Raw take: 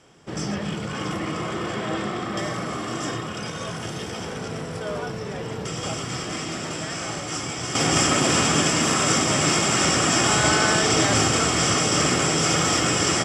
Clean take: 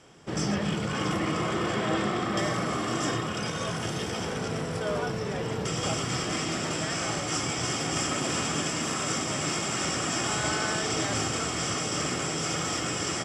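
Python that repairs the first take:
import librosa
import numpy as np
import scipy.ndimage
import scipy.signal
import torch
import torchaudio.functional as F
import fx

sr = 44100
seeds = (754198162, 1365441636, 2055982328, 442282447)

y = fx.fix_level(x, sr, at_s=7.75, step_db=-9.0)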